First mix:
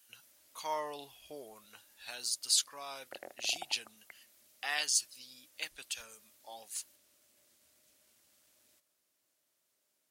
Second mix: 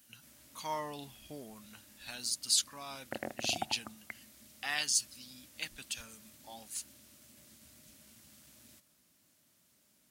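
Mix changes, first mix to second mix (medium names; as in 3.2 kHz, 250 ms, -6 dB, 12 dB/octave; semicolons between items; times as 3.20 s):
background +9.0 dB; master: add resonant low shelf 300 Hz +10.5 dB, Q 1.5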